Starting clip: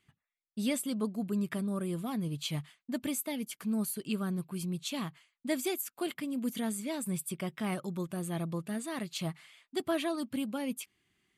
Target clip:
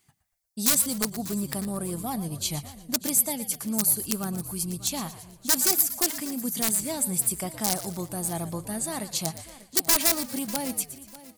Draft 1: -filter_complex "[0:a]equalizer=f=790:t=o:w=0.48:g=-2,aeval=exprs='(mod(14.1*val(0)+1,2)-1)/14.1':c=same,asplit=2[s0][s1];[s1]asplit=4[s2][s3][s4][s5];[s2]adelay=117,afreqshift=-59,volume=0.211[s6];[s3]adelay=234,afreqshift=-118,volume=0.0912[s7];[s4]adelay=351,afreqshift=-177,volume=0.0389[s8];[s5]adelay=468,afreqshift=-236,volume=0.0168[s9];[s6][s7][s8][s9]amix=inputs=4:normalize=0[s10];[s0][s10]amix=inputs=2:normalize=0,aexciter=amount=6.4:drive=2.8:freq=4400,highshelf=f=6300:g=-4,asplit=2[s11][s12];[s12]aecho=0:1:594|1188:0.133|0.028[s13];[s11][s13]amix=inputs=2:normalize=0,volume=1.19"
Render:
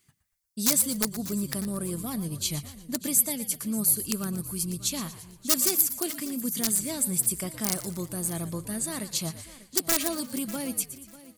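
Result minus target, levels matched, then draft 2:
1 kHz band -4.5 dB
-filter_complex "[0:a]equalizer=f=790:t=o:w=0.48:g=9.5,aeval=exprs='(mod(14.1*val(0)+1,2)-1)/14.1':c=same,asplit=2[s0][s1];[s1]asplit=4[s2][s3][s4][s5];[s2]adelay=117,afreqshift=-59,volume=0.211[s6];[s3]adelay=234,afreqshift=-118,volume=0.0912[s7];[s4]adelay=351,afreqshift=-177,volume=0.0389[s8];[s5]adelay=468,afreqshift=-236,volume=0.0168[s9];[s6][s7][s8][s9]amix=inputs=4:normalize=0[s10];[s0][s10]amix=inputs=2:normalize=0,aexciter=amount=6.4:drive=2.8:freq=4400,highshelf=f=6300:g=-4,asplit=2[s11][s12];[s12]aecho=0:1:594|1188:0.133|0.028[s13];[s11][s13]amix=inputs=2:normalize=0,volume=1.19"

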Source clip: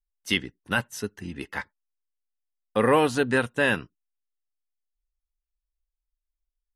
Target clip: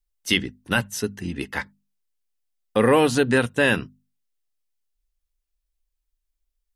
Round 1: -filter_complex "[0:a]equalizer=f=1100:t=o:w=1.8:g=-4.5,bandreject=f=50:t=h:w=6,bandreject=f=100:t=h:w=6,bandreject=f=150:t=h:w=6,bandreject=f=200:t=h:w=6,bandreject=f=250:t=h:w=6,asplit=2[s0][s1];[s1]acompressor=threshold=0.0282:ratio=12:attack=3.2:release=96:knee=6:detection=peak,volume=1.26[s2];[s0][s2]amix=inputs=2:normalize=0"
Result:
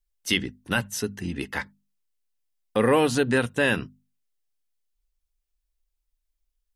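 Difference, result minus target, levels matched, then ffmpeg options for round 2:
compression: peak gain reduction +9.5 dB
-filter_complex "[0:a]equalizer=f=1100:t=o:w=1.8:g=-4.5,bandreject=f=50:t=h:w=6,bandreject=f=100:t=h:w=6,bandreject=f=150:t=h:w=6,bandreject=f=200:t=h:w=6,bandreject=f=250:t=h:w=6,asplit=2[s0][s1];[s1]acompressor=threshold=0.0944:ratio=12:attack=3.2:release=96:knee=6:detection=peak,volume=1.26[s2];[s0][s2]amix=inputs=2:normalize=0"

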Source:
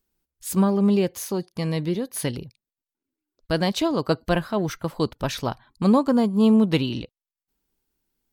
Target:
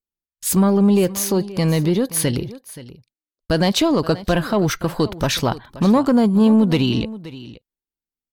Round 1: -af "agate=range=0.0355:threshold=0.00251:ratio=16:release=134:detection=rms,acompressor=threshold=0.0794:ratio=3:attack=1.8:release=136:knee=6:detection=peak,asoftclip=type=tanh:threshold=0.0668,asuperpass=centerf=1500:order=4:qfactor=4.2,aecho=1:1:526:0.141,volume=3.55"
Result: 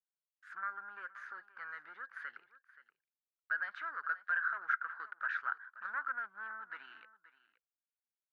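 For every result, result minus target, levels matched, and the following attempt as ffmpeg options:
2 kHz band +17.0 dB; saturation: distortion +9 dB
-af "agate=range=0.0355:threshold=0.00251:ratio=16:release=134:detection=rms,acompressor=threshold=0.0794:ratio=3:attack=1.8:release=136:knee=6:detection=peak,asoftclip=type=tanh:threshold=0.0668,aecho=1:1:526:0.141,volume=3.55"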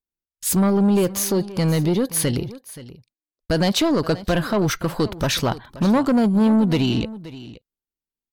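saturation: distortion +9 dB
-af "agate=range=0.0355:threshold=0.00251:ratio=16:release=134:detection=rms,acompressor=threshold=0.0794:ratio=3:attack=1.8:release=136:knee=6:detection=peak,asoftclip=type=tanh:threshold=0.141,aecho=1:1:526:0.141,volume=3.55"

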